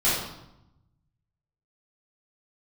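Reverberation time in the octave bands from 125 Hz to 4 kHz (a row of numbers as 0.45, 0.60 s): 1.7, 1.2, 0.85, 0.85, 0.70, 0.70 s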